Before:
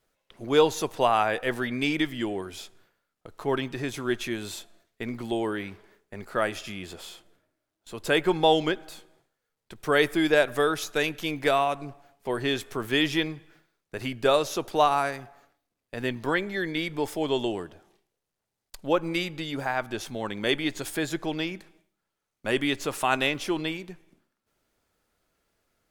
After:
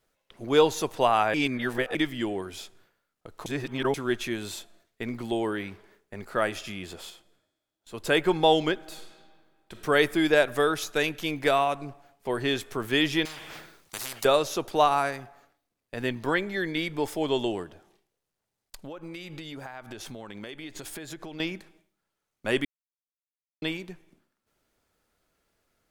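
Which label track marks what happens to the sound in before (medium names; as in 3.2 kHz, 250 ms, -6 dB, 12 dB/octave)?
1.340000	1.950000	reverse
3.460000	3.940000	reverse
7.100000	7.940000	feedback comb 66 Hz, decay 1.4 s, mix 40%
8.780000	9.820000	reverb throw, RT60 1.9 s, DRR 2.5 dB
13.250000	14.250000	spectrum-flattening compressor 10:1
17.630000	21.400000	compression 20:1, threshold -35 dBFS
22.650000	23.620000	mute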